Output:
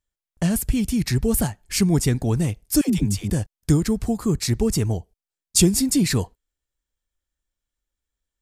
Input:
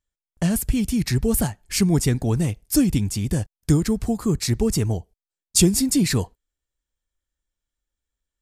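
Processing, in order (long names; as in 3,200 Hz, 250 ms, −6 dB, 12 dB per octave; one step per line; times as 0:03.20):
0:02.81–0:03.30: all-pass dispersion lows, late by 87 ms, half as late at 490 Hz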